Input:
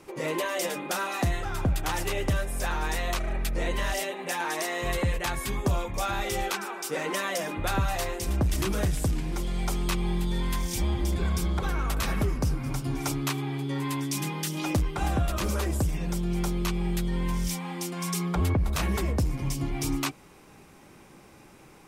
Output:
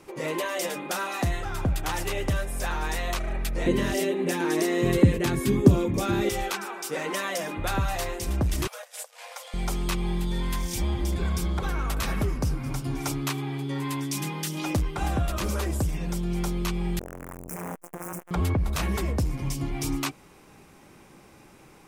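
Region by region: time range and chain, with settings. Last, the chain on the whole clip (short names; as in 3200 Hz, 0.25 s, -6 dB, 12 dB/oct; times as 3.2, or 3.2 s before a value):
3.66–6.29 HPF 110 Hz + resonant low shelf 500 Hz +12 dB, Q 1.5
8.67–9.54 negative-ratio compressor -30 dBFS, ratio -0.5 + brick-wall FIR high-pass 470 Hz
16.99–18.31 infinite clipping + Butterworth band-stop 3800 Hz, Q 0.69 + core saturation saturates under 670 Hz
whole clip: dry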